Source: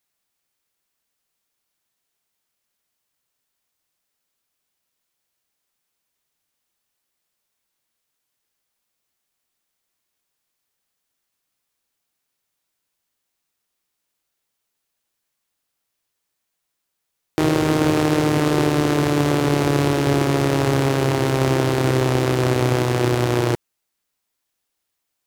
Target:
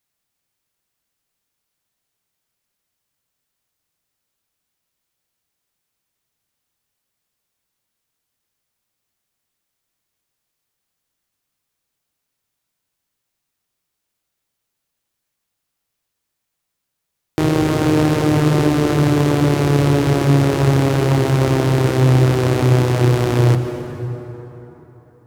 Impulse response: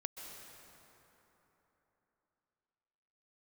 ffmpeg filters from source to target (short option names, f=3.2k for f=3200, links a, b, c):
-filter_complex "[0:a]asplit=2[a][b];[b]equalizer=f=120:t=o:w=1.6:g=4.5[c];[1:a]atrim=start_sample=2205,lowshelf=f=250:g=6.5[d];[c][d]afir=irnorm=-1:irlink=0,volume=3.5dB[e];[a][e]amix=inputs=2:normalize=0,volume=-6.5dB"